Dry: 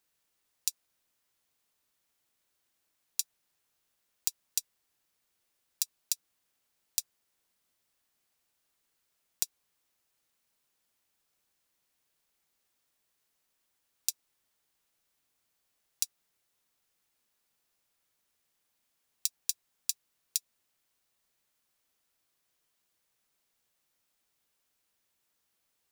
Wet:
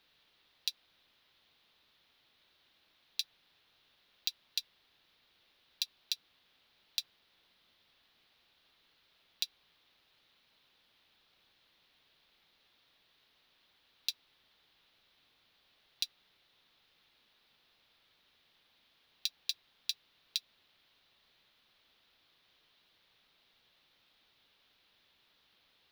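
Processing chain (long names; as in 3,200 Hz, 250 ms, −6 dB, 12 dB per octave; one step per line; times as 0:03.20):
high shelf with overshoot 5,400 Hz −13.5 dB, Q 3
brickwall limiter −24.5 dBFS, peak gain reduction 9.5 dB
level +10 dB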